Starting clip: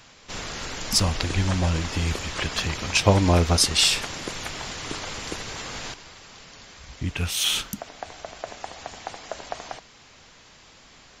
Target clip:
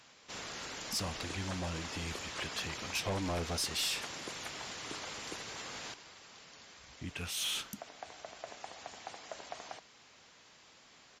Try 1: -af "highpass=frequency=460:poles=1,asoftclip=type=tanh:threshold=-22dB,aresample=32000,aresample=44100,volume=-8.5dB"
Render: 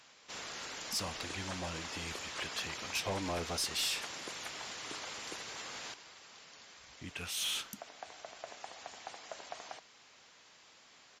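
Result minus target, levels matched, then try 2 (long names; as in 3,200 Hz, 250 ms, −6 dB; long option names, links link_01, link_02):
250 Hz band −2.5 dB
-af "highpass=frequency=210:poles=1,asoftclip=type=tanh:threshold=-22dB,aresample=32000,aresample=44100,volume=-8.5dB"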